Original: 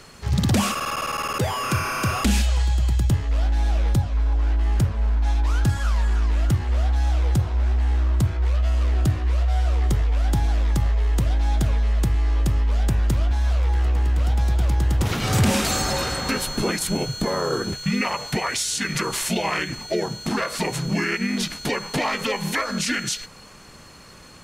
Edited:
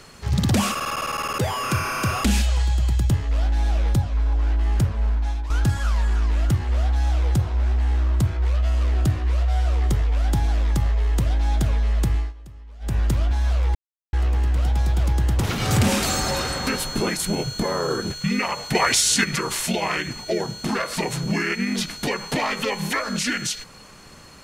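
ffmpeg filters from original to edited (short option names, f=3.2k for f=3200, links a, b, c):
-filter_complex "[0:a]asplit=7[a][b][c][d][e][f][g];[a]atrim=end=5.5,asetpts=PTS-STARTPTS,afade=t=out:st=5.09:d=0.41:silence=0.316228[h];[b]atrim=start=5.5:end=12.33,asetpts=PTS-STARTPTS,afade=t=in:d=0.004:c=hsin:silence=0.316228,afade=t=out:st=6.66:d=0.17:silence=0.0891251[i];[c]atrim=start=12.33:end=12.8,asetpts=PTS-STARTPTS,volume=-21dB[j];[d]atrim=start=12.8:end=13.75,asetpts=PTS-STARTPTS,afade=t=in:d=0.17:silence=0.0891251,afade=t=out:st=0.946:d=0.004:c=hsin,apad=pad_dur=0.38[k];[e]atrim=start=13.75:end=18.372,asetpts=PTS-STARTPTS,afade=t=in:d=0.004:c=hsin[l];[f]atrim=start=18.368:end=18.862,asetpts=PTS-STARTPTS,volume=6.5dB[m];[g]atrim=start=18.858[n];[h][i][j][k][l]concat=n=5:v=0:a=1[o];[o][m]acrossfade=d=0.004:c1=hsin:c2=hsin[p];[p][n]acrossfade=d=0.004:c1=hsin:c2=hsin"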